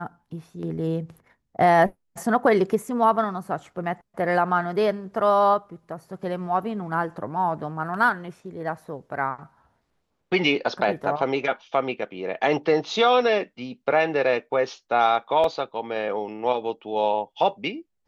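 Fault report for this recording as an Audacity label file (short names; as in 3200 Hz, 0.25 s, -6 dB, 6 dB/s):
15.440000	15.440000	gap 2.4 ms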